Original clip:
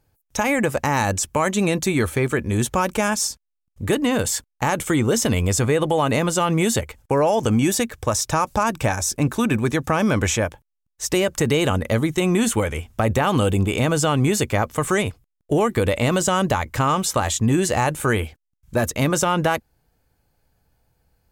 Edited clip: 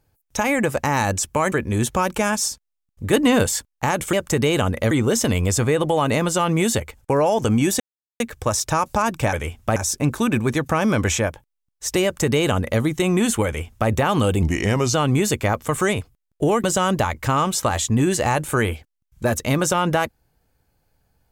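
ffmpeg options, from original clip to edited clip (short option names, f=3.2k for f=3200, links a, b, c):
-filter_complex "[0:a]asplit=12[a][b][c][d][e][f][g][h][i][j][k][l];[a]atrim=end=1.522[m];[b]atrim=start=2.308:end=3.922[n];[c]atrim=start=3.918:end=4.252,asetpts=PTS-STARTPTS,volume=4dB[o];[d]atrim=start=4.248:end=4.922[p];[e]atrim=start=11.208:end=11.992[q];[f]atrim=start=4.918:end=7.81,asetpts=PTS-STARTPTS,afade=t=out:st=2.888:d=0.004:c=hsin,apad=pad_dur=0.4[r];[g]atrim=start=7.81:end=8.942,asetpts=PTS-STARTPTS,afade=t=in:d=0.004:c=hsin[s];[h]atrim=start=12.638:end=13.072[t];[i]atrim=start=8.938:end=13.604[u];[j]atrim=start=13.6:end=14.03,asetpts=PTS-STARTPTS,asetrate=36603,aresample=44100[v];[k]atrim=start=14.026:end=15.732[w];[l]atrim=start=16.148[x];[m][n]acrossfade=d=0.004:c1=hsin:c2=hsin[y];[y][o]acrossfade=d=0.004:c1=hsin:c2=hsin[z];[z][p]acrossfade=d=0.004:c1=hsin:c2=hsin[aa];[aa][q]acrossfade=d=0.004:c1=hsin:c2=hsin[ab];[r][s]concat=n=2:v=0:a=1[ac];[ab][ac]acrossfade=d=0.004:c1=hsin:c2=hsin[ad];[ad][t]acrossfade=d=0.004:c1=hsin:c2=hsin[ae];[ae][u]acrossfade=d=0.004:c1=hsin:c2=hsin[af];[af][v]acrossfade=d=0.004:c1=hsin:c2=hsin[ag];[ag][w]acrossfade=d=0.004:c1=hsin:c2=hsin[ah];[ah][x]acrossfade=d=0.004:c1=hsin:c2=hsin"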